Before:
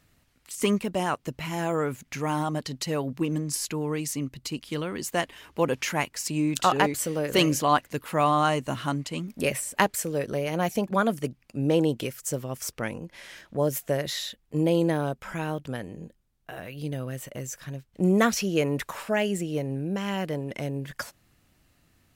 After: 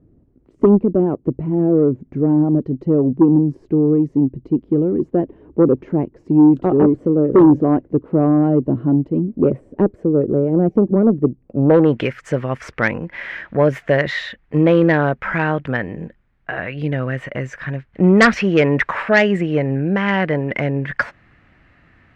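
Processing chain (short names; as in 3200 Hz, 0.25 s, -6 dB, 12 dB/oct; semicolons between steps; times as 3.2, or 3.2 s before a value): low-pass sweep 360 Hz -> 1900 Hz, 11.39–11.96; added harmonics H 5 -13 dB, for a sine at -5.5 dBFS; gain +4.5 dB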